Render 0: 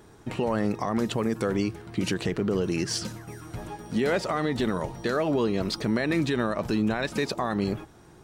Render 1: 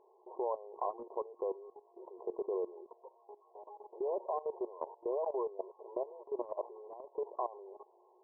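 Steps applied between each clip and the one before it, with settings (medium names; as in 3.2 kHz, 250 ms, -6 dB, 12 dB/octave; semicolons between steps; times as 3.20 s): FFT band-pass 350–1100 Hz; tilt EQ +2 dB/octave; level held to a coarse grid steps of 16 dB; trim -2 dB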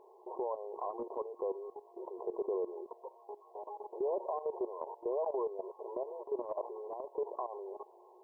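peak limiter -34 dBFS, peak gain reduction 11 dB; trim +6.5 dB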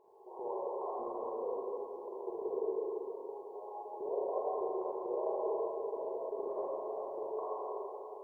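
reverberation RT60 3.2 s, pre-delay 37 ms, DRR -7.5 dB; trim -7 dB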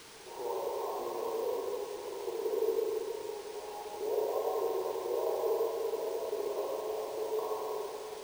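word length cut 8-bit, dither triangular; small resonant body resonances 300/440/930 Hz, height 6 dB; careless resampling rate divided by 3×, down filtered, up hold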